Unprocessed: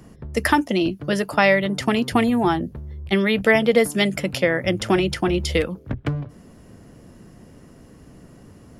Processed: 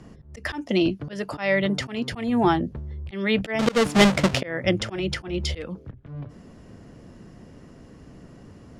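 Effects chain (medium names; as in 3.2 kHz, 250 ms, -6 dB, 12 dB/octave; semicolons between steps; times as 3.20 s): 3.59–4.41 s: square wave that keeps the level; low-pass 6.6 kHz 12 dB/octave; slow attack 251 ms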